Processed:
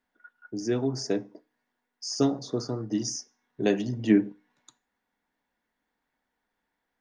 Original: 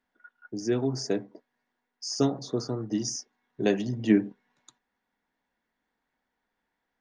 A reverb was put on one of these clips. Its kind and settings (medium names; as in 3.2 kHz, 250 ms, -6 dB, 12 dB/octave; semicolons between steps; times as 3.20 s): FDN reverb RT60 0.36 s, low-frequency decay 0.95×, high-frequency decay 1×, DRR 17.5 dB